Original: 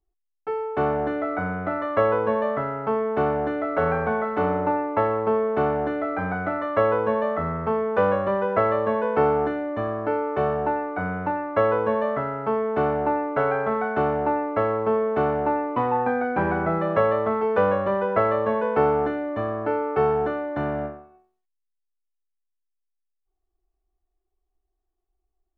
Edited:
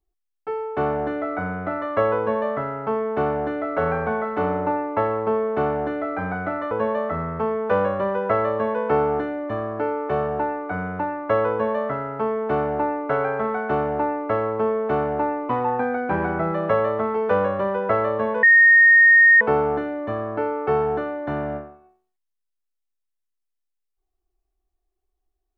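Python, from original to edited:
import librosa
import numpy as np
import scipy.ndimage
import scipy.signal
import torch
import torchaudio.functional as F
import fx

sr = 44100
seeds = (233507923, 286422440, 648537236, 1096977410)

y = fx.edit(x, sr, fx.cut(start_s=6.71, length_s=0.27),
    fx.insert_tone(at_s=18.7, length_s=0.98, hz=1850.0, db=-9.0), tone=tone)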